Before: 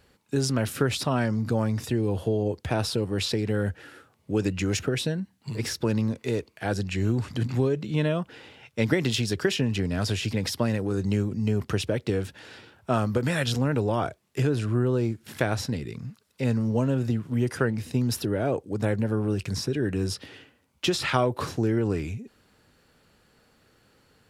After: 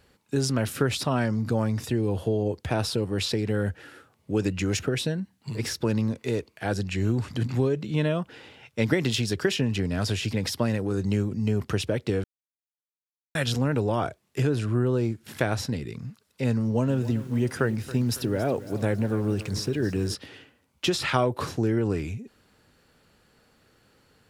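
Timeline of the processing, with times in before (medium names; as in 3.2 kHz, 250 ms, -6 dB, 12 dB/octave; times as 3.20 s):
12.24–13.35 s: mute
16.60–20.15 s: bit-crushed delay 277 ms, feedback 55%, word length 7-bit, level -15 dB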